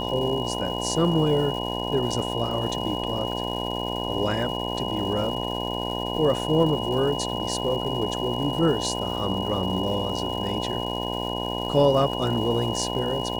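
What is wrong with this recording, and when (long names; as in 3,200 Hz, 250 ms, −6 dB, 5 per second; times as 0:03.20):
mains buzz 60 Hz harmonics 17 −30 dBFS
surface crackle 540 per second −35 dBFS
whistle 2,900 Hz −32 dBFS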